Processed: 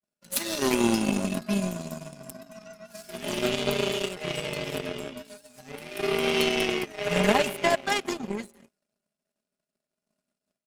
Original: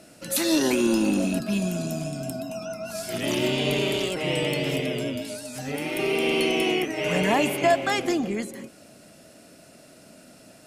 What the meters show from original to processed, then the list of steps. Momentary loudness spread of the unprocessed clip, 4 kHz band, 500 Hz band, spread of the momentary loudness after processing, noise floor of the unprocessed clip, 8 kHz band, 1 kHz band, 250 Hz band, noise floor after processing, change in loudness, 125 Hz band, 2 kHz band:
11 LU, -2.0 dB, -3.0 dB, 20 LU, -51 dBFS, -2.5 dB, -2.0 dB, -4.5 dB, under -85 dBFS, -2.0 dB, -4.0 dB, -2.0 dB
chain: expander -46 dBFS; comb 4.9 ms, depth 91%; power-law curve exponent 2; gain +3.5 dB

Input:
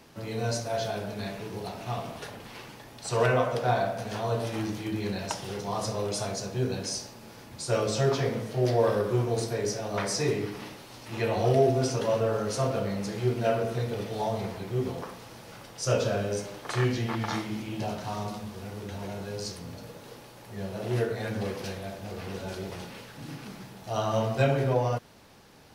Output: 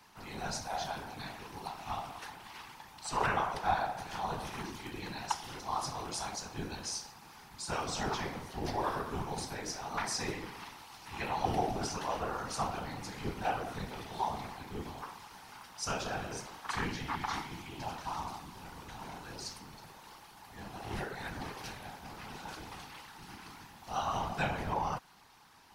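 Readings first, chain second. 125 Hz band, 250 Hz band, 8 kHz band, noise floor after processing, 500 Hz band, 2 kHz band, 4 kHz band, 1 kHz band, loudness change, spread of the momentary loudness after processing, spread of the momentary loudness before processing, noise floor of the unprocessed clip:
-13.5 dB, -10.0 dB, -4.5 dB, -55 dBFS, -14.0 dB, -3.5 dB, -4.5 dB, -1.0 dB, -8.0 dB, 15 LU, 17 LU, -48 dBFS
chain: whisperiser; resonant low shelf 700 Hz -6.5 dB, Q 3; gain -4.5 dB

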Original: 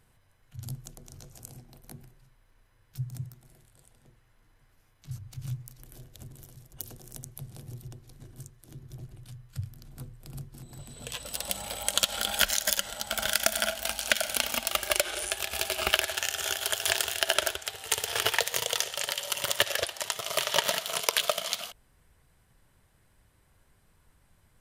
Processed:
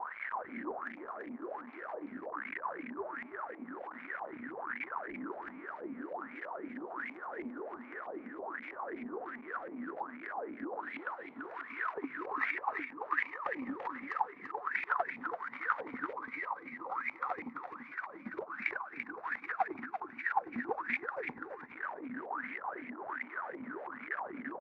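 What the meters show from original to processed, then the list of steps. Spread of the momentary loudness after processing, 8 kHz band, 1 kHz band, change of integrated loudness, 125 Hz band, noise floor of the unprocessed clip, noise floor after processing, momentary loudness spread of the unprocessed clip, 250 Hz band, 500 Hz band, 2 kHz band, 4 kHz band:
9 LU, under -40 dB, +1.0 dB, -11.5 dB, under -20 dB, -65 dBFS, -51 dBFS, 20 LU, +5.5 dB, -6.5 dB, -4.0 dB, -34.0 dB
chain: zero-crossing step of -32.5 dBFS; low shelf 210 Hz +6 dB; spectral gate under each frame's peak -15 dB weak; in parallel at -5 dB: bit-crush 5-bit; on the sum: wah 1.3 Hz 240–2300 Hz, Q 14; on a send: echo 0.338 s -7.5 dB; on the sum: LFO low-pass saw up 3.1 Hz 860–2100 Hz; gain +14 dB

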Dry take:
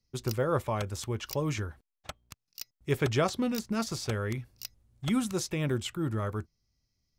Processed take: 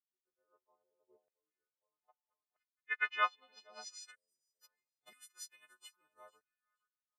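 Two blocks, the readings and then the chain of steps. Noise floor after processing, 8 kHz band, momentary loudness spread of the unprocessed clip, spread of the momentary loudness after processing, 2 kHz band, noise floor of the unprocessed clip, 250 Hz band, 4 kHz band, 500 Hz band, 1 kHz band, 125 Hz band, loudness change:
under -85 dBFS, -14.0 dB, 17 LU, 25 LU, -1.0 dB, -85 dBFS, under -40 dB, -12.5 dB, -24.5 dB, -5.5 dB, under -40 dB, -6.5 dB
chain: frequency quantiser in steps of 3 st; feedback echo 0.468 s, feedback 20%, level -11 dB; spectral delete 4.15–4.61, 720–4400 Hz; low-pass sweep 410 Hz -> 11000 Hz, 1.58–4.37; high shelf 6000 Hz -10.5 dB; LFO high-pass saw down 0.78 Hz 610–2000 Hz; upward expander 2.5:1, over -41 dBFS; gain -8 dB

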